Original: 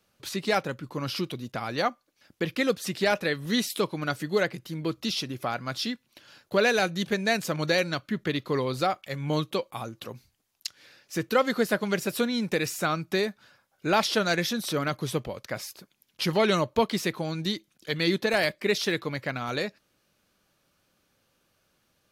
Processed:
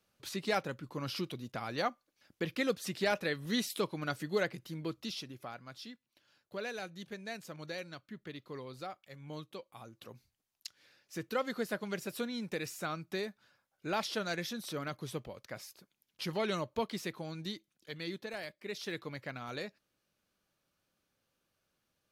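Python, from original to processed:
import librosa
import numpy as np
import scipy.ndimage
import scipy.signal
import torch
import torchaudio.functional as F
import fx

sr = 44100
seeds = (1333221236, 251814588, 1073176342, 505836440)

y = fx.gain(x, sr, db=fx.line((4.7, -7.0), (5.75, -17.5), (9.64, -17.5), (10.13, -11.0), (17.44, -11.0), (18.55, -19.0), (18.99, -11.0)))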